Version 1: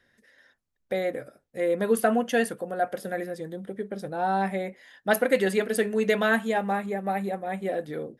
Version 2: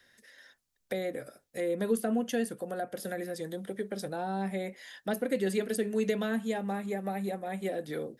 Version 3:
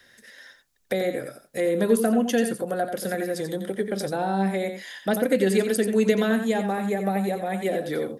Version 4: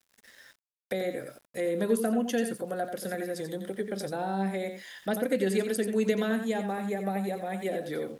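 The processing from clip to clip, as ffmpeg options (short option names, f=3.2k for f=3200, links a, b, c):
-filter_complex "[0:a]acrossover=split=640|3400[a][b][c];[c]acontrast=87[d];[a][b][d]amix=inputs=3:normalize=0,lowshelf=f=440:g=-5.5,acrossover=split=400[e][f];[f]acompressor=threshold=-38dB:ratio=10[g];[e][g]amix=inputs=2:normalize=0,volume=2dB"
-af "aecho=1:1:88:0.398,volume=8dB"
-af "aeval=exprs='val(0)*gte(abs(val(0)),0.00398)':c=same,volume=-6dB"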